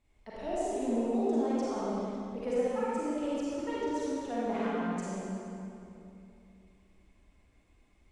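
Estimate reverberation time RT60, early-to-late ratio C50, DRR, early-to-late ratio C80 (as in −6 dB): 2.9 s, −6.5 dB, −8.5 dB, −3.5 dB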